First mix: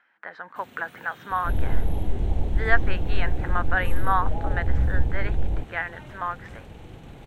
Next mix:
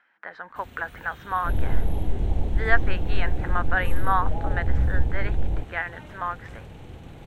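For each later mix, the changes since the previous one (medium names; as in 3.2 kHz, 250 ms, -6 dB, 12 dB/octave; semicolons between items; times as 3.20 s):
first sound: remove high-pass 130 Hz 24 dB/octave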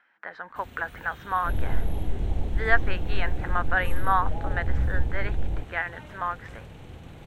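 second sound -3.0 dB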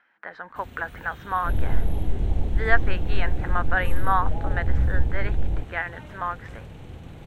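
master: add bass shelf 460 Hz +3.5 dB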